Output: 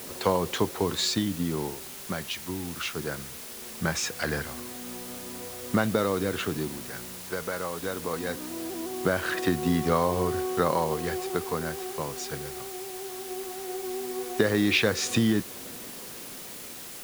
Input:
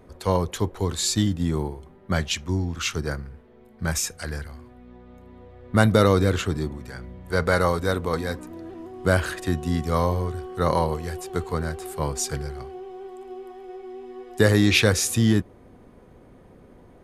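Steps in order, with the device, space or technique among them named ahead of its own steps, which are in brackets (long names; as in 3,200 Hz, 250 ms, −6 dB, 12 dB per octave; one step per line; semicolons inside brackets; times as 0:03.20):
medium wave at night (band-pass filter 170–4,400 Hz; downward compressor, threshold −27 dBFS, peak gain reduction 13 dB; amplitude tremolo 0.2 Hz, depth 66%; steady tone 10,000 Hz −59 dBFS; white noise bed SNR 12 dB)
level +7 dB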